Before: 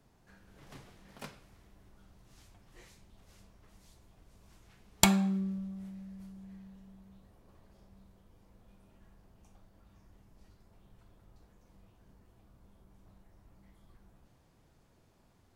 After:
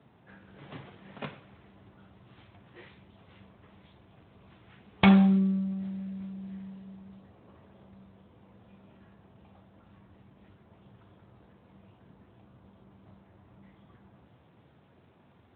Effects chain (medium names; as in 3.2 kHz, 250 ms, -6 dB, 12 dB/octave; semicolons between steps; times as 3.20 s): loudness maximiser +8 dB; Speex 18 kbps 8 kHz